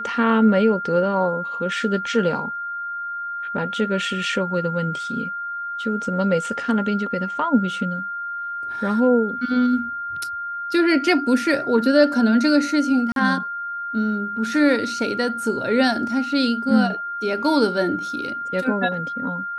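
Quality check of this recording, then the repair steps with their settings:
whine 1.4 kHz -26 dBFS
13.12–13.16 s: dropout 42 ms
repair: band-stop 1.4 kHz, Q 30; interpolate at 13.12 s, 42 ms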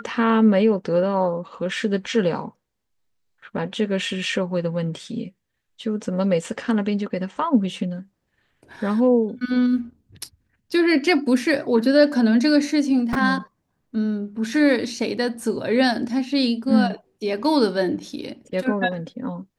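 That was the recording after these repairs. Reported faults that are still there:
nothing left

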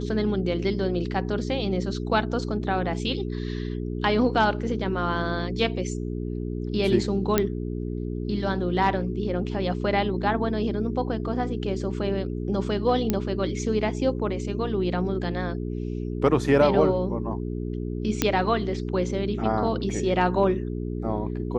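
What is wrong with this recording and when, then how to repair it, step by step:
hum 60 Hz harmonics 7 -30 dBFS
7.38 s: pop -6 dBFS
13.10 s: pop -9 dBFS
18.22 s: pop -5 dBFS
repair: de-click; de-hum 60 Hz, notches 7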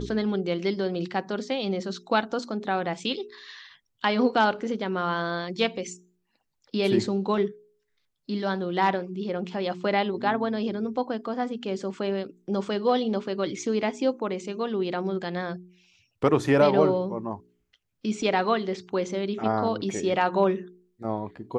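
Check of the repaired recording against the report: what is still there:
nothing left

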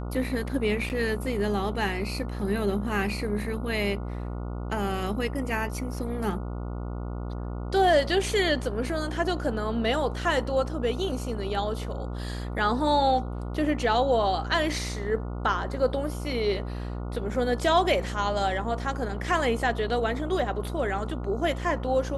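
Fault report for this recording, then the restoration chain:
buzz 60 Hz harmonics 24 -33 dBFS
0.89–0.90 s: dropout 9 ms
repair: de-hum 60 Hz, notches 24; interpolate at 0.89 s, 9 ms

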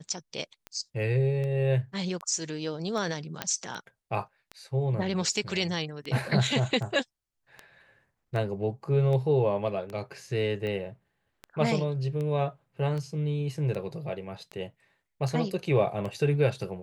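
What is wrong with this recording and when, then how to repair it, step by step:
tick 78 rpm -24 dBFS
3.42 s: pop -13 dBFS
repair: de-click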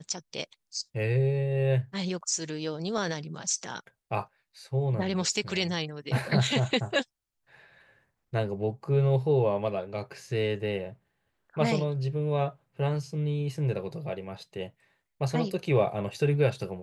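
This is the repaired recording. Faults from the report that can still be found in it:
nothing left

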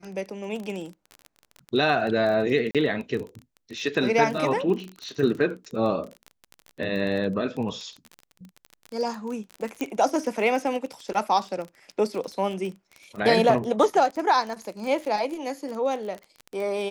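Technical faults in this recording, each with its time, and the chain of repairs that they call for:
crackle 23 per s -30 dBFS
2.71–2.75 s: dropout 37 ms
9.81 s: pop -15 dBFS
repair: de-click; interpolate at 2.71 s, 37 ms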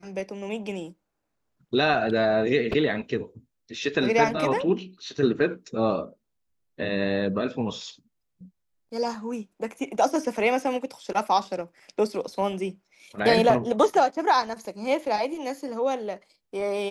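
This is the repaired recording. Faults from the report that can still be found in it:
nothing left

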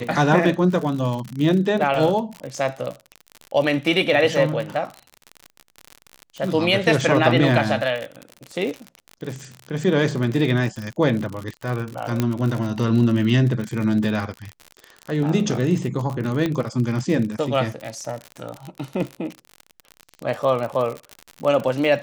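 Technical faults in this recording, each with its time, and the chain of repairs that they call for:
crackle 52 per s -26 dBFS
12.20 s: pop -7 dBFS
16.46 s: pop -11 dBFS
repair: de-click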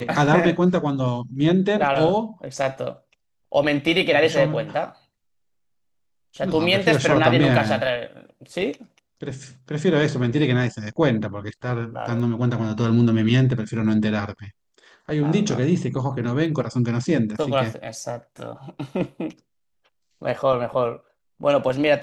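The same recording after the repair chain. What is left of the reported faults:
12.20 s: pop
16.46 s: pop

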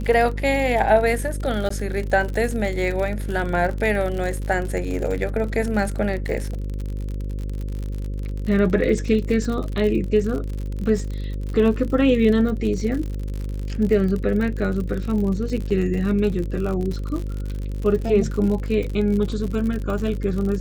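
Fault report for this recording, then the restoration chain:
buzz 50 Hz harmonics 11 -27 dBFS
crackle 60 per s -27 dBFS
1.69–1.70 s: dropout 14 ms
15.70–15.71 s: dropout 6.1 ms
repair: de-click; de-hum 50 Hz, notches 11; interpolate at 1.69 s, 14 ms; interpolate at 15.70 s, 6.1 ms

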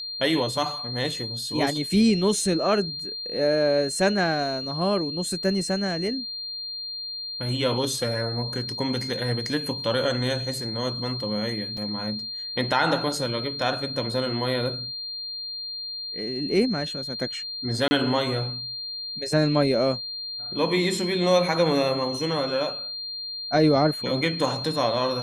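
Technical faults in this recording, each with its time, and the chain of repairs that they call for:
whine 4.2 kHz -31 dBFS
11.77 s: dropout 3.6 ms
17.88–17.91 s: dropout 30 ms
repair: band-stop 4.2 kHz, Q 30; interpolate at 11.77 s, 3.6 ms; interpolate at 17.88 s, 30 ms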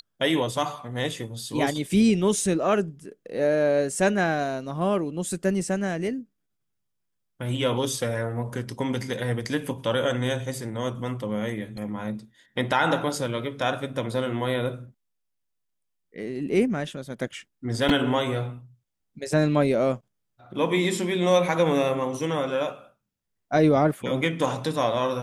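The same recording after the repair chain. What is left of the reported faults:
nothing left

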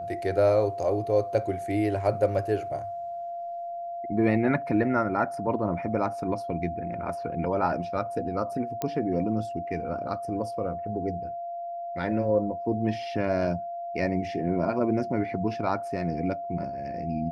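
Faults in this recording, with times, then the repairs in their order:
whine 690 Hz -32 dBFS
8.82 s: pop -15 dBFS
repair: de-click; band-stop 690 Hz, Q 30

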